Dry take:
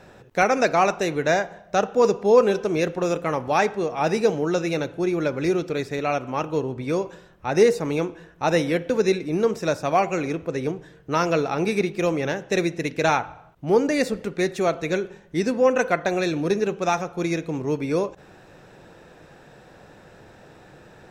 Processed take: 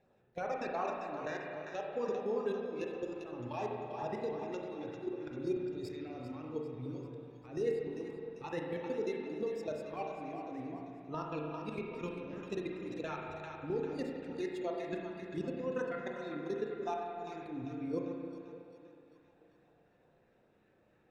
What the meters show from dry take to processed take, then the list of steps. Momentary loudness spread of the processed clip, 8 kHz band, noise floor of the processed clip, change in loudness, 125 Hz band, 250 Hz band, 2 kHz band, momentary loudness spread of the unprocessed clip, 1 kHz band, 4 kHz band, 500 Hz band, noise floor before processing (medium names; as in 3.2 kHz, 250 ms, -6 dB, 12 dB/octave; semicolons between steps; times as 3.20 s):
7 LU, under -25 dB, -70 dBFS, -16.5 dB, -16.5 dB, -15.0 dB, -20.0 dB, 8 LU, -17.5 dB, -20.5 dB, -16.5 dB, -50 dBFS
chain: coarse spectral quantiser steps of 15 dB; level held to a coarse grid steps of 21 dB; spectral noise reduction 11 dB; bass shelf 160 Hz -8 dB; compression 3:1, threshold -38 dBFS, peak gain reduction 14 dB; tone controls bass +2 dB, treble -10 dB; two-band feedback delay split 640 Hz, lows 296 ms, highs 395 ms, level -12.5 dB; peak limiter -31.5 dBFS, peak gain reduction 10 dB; LFO notch sine 2.8 Hz 610–2300 Hz; spring tank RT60 2 s, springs 33/46 ms, chirp 55 ms, DRR 0 dB; trim +3.5 dB